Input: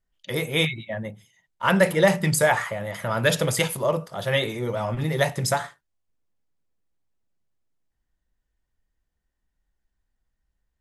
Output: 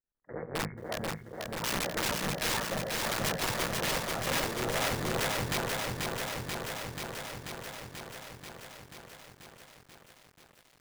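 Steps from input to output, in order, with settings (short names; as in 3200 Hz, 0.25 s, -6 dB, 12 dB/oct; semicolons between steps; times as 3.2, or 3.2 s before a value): cycle switcher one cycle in 3, muted; steep low-pass 1800 Hz 72 dB/oct; low shelf 200 Hz -8 dB; AGC gain up to 9 dB; resonator 240 Hz, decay 0.73 s, mix 40%; wrapped overs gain 18.5 dB; lo-fi delay 0.486 s, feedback 80%, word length 9-bit, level -3 dB; gain -7 dB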